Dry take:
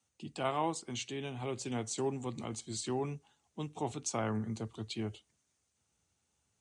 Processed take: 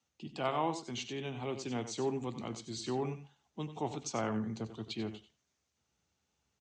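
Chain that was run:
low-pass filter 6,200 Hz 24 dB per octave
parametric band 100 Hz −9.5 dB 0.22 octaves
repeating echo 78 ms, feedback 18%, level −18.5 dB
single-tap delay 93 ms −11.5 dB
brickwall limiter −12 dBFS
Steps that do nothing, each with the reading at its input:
brickwall limiter −12 dBFS: peak of its input −20.5 dBFS

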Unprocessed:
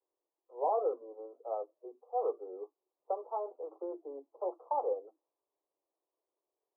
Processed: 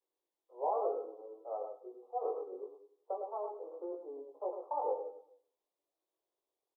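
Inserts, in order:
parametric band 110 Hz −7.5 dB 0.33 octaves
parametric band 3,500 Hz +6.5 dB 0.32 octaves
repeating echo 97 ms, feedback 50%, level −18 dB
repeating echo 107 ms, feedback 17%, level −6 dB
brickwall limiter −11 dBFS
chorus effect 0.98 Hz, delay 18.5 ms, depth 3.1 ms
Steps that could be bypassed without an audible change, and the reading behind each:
parametric band 110 Hz: nothing at its input below 270 Hz
parametric band 3,500 Hz: nothing at its input above 1,400 Hz
brickwall limiter −11 dBFS: peak of its input −19.5 dBFS

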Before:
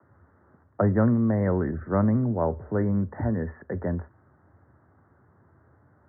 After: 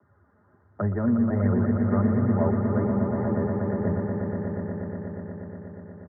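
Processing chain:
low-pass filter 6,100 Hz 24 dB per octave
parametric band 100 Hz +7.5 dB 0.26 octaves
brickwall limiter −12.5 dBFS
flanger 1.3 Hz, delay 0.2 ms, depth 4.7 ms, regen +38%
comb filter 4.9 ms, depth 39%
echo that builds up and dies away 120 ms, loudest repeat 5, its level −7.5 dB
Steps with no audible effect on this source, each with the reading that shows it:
low-pass filter 6,100 Hz: nothing at its input above 1,400 Hz

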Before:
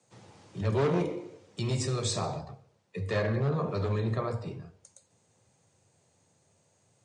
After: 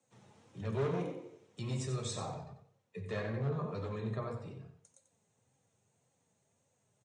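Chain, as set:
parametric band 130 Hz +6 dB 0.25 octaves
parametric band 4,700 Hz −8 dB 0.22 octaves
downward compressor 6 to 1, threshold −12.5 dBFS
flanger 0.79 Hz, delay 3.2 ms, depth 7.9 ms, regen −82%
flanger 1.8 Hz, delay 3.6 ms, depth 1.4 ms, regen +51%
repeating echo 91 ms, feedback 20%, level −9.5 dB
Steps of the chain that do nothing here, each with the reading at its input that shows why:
downward compressor, threshold −12.5 dBFS: peak of its input −14.5 dBFS

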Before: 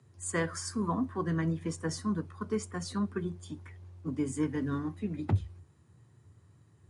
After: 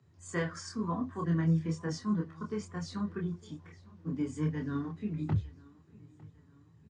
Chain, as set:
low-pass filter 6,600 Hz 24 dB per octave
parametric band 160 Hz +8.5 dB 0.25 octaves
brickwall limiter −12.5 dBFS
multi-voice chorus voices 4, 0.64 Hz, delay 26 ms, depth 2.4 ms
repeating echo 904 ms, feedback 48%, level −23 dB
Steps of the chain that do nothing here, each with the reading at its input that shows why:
brickwall limiter −12.5 dBFS: peak of its input −16.0 dBFS

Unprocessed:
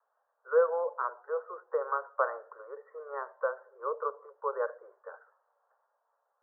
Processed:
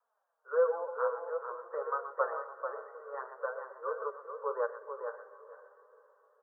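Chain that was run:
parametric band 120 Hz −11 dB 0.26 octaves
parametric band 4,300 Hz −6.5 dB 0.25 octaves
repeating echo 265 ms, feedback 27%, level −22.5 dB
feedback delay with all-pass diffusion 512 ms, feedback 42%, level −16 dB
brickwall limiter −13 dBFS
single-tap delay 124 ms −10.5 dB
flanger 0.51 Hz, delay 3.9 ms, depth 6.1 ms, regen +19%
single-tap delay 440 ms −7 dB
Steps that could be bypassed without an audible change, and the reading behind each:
parametric band 120 Hz: nothing at its input below 340 Hz
parametric band 4,300 Hz: nothing at its input above 1,800 Hz
brickwall limiter −13 dBFS: peak of its input −15.0 dBFS

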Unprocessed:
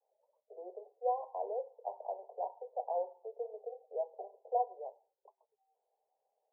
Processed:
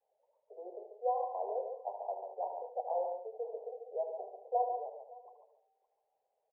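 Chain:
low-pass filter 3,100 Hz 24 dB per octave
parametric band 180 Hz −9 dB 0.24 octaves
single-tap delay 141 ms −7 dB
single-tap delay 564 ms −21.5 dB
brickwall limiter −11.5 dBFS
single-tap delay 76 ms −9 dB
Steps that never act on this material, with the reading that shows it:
low-pass filter 3,100 Hz: nothing at its input above 1,100 Hz
parametric band 180 Hz: nothing at its input below 340 Hz
brickwall limiter −11.5 dBFS: peak of its input −21.0 dBFS

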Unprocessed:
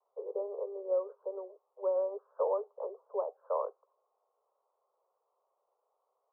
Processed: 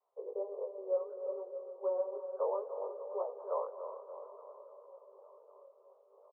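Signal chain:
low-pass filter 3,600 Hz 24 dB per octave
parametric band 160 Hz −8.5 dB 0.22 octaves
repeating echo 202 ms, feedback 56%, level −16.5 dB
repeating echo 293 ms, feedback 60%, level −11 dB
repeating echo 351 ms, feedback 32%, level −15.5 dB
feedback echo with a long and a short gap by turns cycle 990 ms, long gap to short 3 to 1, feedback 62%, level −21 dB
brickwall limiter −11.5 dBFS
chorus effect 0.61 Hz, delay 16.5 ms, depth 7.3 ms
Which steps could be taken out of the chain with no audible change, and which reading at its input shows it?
low-pass filter 3,600 Hz: nothing at its input above 1,300 Hz
parametric band 160 Hz: nothing at its input below 360 Hz
brickwall limiter −11.5 dBFS: peak of its input −19.5 dBFS

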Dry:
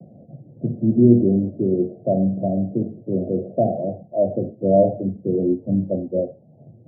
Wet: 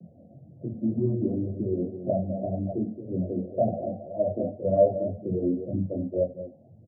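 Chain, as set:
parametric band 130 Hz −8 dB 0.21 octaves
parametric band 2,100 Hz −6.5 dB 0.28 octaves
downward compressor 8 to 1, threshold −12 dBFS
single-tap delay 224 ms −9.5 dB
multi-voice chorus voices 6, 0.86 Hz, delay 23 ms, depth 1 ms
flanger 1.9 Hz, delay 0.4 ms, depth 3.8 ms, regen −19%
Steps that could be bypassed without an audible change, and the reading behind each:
parametric band 2,100 Hz: nothing at its input above 760 Hz

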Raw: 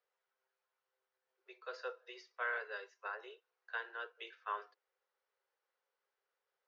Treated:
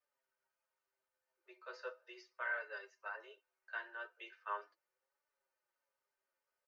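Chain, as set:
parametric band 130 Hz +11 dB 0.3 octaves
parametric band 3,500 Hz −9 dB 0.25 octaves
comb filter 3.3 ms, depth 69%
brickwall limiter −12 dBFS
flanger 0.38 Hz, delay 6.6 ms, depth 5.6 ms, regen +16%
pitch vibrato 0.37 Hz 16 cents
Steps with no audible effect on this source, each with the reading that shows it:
parametric band 130 Hz: nothing at its input below 340 Hz
brickwall limiter −12 dBFS: peak of its input −25.0 dBFS

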